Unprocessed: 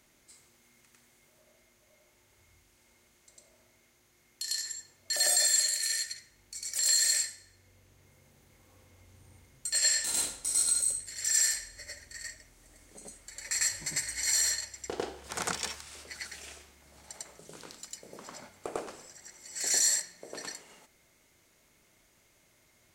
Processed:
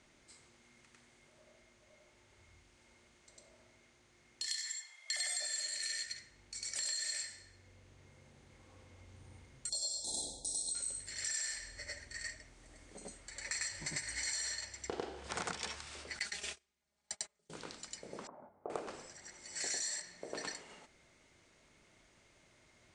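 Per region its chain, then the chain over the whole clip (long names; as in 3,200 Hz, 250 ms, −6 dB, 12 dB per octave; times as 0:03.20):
0:04.46–0:05.40: high-pass filter 770 Hz 24 dB per octave + high-shelf EQ 8,800 Hz +10 dB + hollow resonant body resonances 2,100/3,300 Hz, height 18 dB, ringing for 40 ms
0:09.69–0:10.75: linear-phase brick-wall band-stop 910–3,300 Hz + parametric band 12,000 Hz +5 dB 0.27 octaves
0:16.19–0:17.50: high-shelf EQ 2,300 Hz +8.5 dB + comb filter 4.9 ms, depth 75% + noise gate −40 dBFS, range −32 dB
0:18.27–0:18.70: transistor ladder low-pass 1,100 Hz, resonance 30% + low-shelf EQ 110 Hz −11.5 dB
whole clip: elliptic low-pass filter 9,200 Hz, stop band 60 dB; high-shelf EQ 6,500 Hz −10 dB; downward compressor 6 to 1, threshold −38 dBFS; level +2 dB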